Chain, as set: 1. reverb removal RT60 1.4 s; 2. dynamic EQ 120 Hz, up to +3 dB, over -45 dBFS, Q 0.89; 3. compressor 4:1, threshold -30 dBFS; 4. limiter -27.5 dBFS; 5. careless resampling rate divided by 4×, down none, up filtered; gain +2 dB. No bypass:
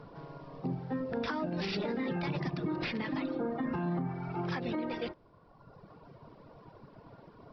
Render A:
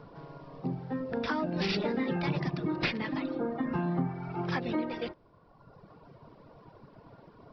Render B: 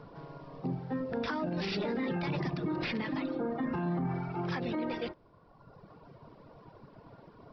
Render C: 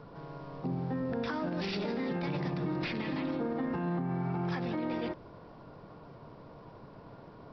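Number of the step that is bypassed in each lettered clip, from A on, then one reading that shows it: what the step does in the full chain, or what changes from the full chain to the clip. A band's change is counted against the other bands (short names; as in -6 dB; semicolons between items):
4, crest factor change +7.0 dB; 3, mean gain reduction 2.5 dB; 1, momentary loudness spread change -3 LU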